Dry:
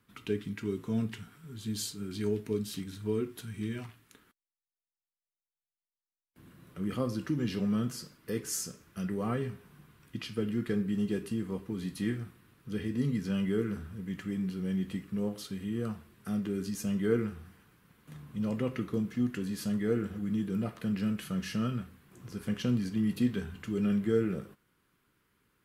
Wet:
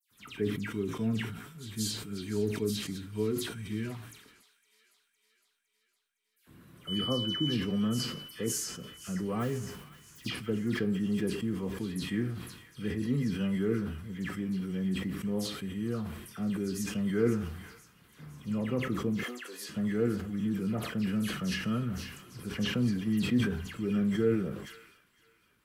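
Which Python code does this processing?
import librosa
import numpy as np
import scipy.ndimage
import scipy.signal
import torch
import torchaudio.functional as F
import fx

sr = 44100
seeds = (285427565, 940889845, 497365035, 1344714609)

y = fx.mod_noise(x, sr, seeds[0], snr_db=19, at=(9.39, 10.29))
y = fx.highpass(y, sr, hz=450.0, slope=24, at=(19.12, 19.58))
y = fx.dispersion(y, sr, late='lows', ms=112.0, hz=2800.0)
y = fx.dmg_tone(y, sr, hz=3000.0, level_db=-34.0, at=(6.87, 7.53), fade=0.02)
y = fx.echo_wet_highpass(y, sr, ms=510, feedback_pct=58, hz=1800.0, wet_db=-14)
y = fx.sustainer(y, sr, db_per_s=58.0)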